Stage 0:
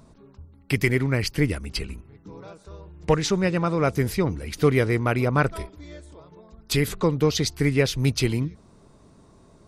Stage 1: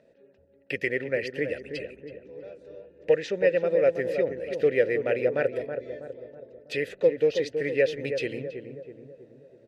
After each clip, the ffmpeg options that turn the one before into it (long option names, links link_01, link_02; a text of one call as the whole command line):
ffmpeg -i in.wav -filter_complex "[0:a]asplit=3[link_01][link_02][link_03];[link_01]bandpass=frequency=530:width_type=q:width=8,volume=0dB[link_04];[link_02]bandpass=frequency=1840:width_type=q:width=8,volume=-6dB[link_05];[link_03]bandpass=frequency=2480:width_type=q:width=8,volume=-9dB[link_06];[link_04][link_05][link_06]amix=inputs=3:normalize=0,asplit=2[link_07][link_08];[link_08]adelay=324,lowpass=frequency=980:poles=1,volume=-6.5dB,asplit=2[link_09][link_10];[link_10]adelay=324,lowpass=frequency=980:poles=1,volume=0.55,asplit=2[link_11][link_12];[link_12]adelay=324,lowpass=frequency=980:poles=1,volume=0.55,asplit=2[link_13][link_14];[link_14]adelay=324,lowpass=frequency=980:poles=1,volume=0.55,asplit=2[link_15][link_16];[link_16]adelay=324,lowpass=frequency=980:poles=1,volume=0.55,asplit=2[link_17][link_18];[link_18]adelay=324,lowpass=frequency=980:poles=1,volume=0.55,asplit=2[link_19][link_20];[link_20]adelay=324,lowpass=frequency=980:poles=1,volume=0.55[link_21];[link_07][link_09][link_11][link_13][link_15][link_17][link_19][link_21]amix=inputs=8:normalize=0,volume=8dB" out.wav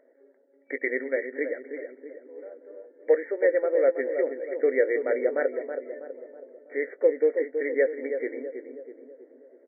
ffmpeg -i in.wav -filter_complex "[0:a]afftfilt=real='re*between(b*sr/4096,240,2300)':imag='im*between(b*sr/4096,240,2300)':win_size=4096:overlap=0.75,asplit=2[link_01][link_02];[link_02]adelay=19,volume=-12dB[link_03];[link_01][link_03]amix=inputs=2:normalize=0" out.wav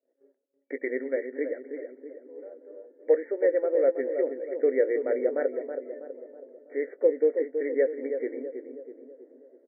ffmpeg -i in.wav -af "tiltshelf=frequency=900:gain=6,agate=range=-33dB:threshold=-48dB:ratio=3:detection=peak,volume=-4dB" out.wav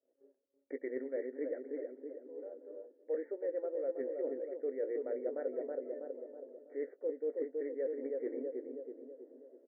ffmpeg -i in.wav -af "areverse,acompressor=threshold=-31dB:ratio=6,areverse,lowpass=1300,volume=-3dB" out.wav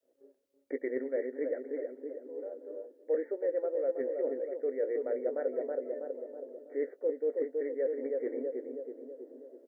ffmpeg -i in.wav -af "adynamicequalizer=threshold=0.00224:dfrequency=320:dqfactor=2.2:tfrequency=320:tqfactor=2.2:attack=5:release=100:ratio=0.375:range=2.5:mode=cutabove:tftype=bell,volume=6dB" out.wav